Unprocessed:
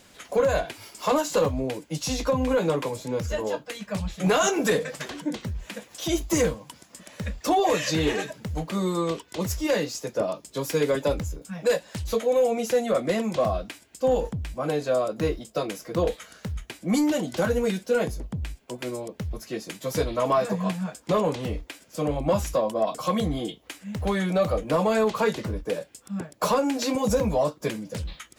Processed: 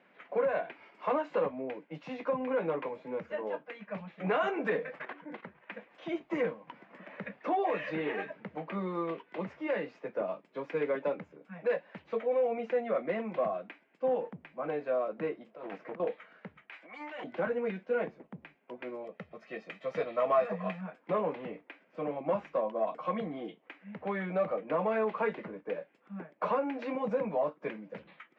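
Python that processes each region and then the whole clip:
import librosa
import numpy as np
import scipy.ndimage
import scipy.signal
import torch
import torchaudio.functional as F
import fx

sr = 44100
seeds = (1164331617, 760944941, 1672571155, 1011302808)

y = fx.chain(x, sr, fx.peak_eq(hz=1200.0, db=7.0, octaves=2.3),
    fx.level_steps(step_db=11), at=(4.96, 5.72))
y = fx.chain(y, sr, fx.median_filter(points=3),
    fx.doubler(ms=15.0, db=-13),
    fx.band_squash(depth_pct=40), at=(6.67, 10.41))
y = fx.chain(y, sr, fx.over_compress(threshold_db=-34.0, ratio=-1.0),
    fx.high_shelf(hz=5500.0, db=-5.0),
    fx.doppler_dist(depth_ms=0.49), at=(15.46, 16.0))
y = fx.chain(y, sr, fx.highpass(hz=1000.0, slope=12),
    fx.transient(attack_db=-5, sustain_db=11), at=(16.69, 17.24))
y = fx.chain(y, sr, fx.high_shelf(hz=3400.0, db=9.5),
    fx.comb(ms=1.6, depth=0.45), at=(19.04, 20.81))
y = scipy.signal.sosfilt(scipy.signal.cheby1(3, 1.0, [170.0, 2300.0], 'bandpass', fs=sr, output='sos'), y)
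y = fx.low_shelf(y, sr, hz=230.0, db=-9.5)
y = F.gain(torch.from_numpy(y), -5.5).numpy()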